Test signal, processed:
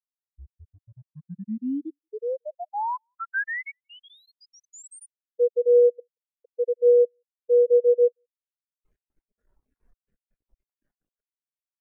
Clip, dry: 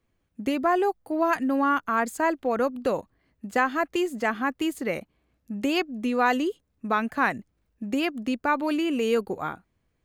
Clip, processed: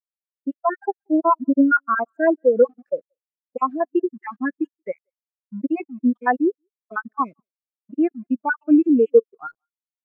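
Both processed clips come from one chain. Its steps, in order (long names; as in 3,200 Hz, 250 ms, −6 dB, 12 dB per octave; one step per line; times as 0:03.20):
time-frequency cells dropped at random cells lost 48%
graphic EQ with 15 bands 100 Hz −10 dB, 1,600 Hz +3 dB, 4,000 Hz −11 dB
automatic gain control gain up to 7 dB
bit reduction 5 bits
far-end echo of a speakerphone 180 ms, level −20 dB
every bin expanded away from the loudest bin 2.5 to 1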